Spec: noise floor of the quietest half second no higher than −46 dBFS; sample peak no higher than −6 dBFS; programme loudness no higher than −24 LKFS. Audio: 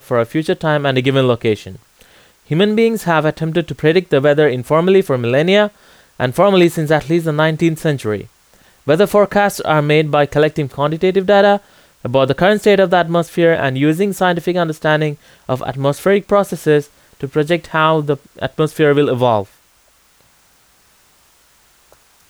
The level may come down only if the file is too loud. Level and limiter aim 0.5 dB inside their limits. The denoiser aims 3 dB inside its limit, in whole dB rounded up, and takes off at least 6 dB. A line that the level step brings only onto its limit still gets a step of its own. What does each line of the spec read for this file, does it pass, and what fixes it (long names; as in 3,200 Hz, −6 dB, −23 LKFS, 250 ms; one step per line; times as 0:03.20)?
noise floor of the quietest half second −53 dBFS: in spec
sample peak −2.0 dBFS: out of spec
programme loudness −15.0 LKFS: out of spec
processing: level −9.5 dB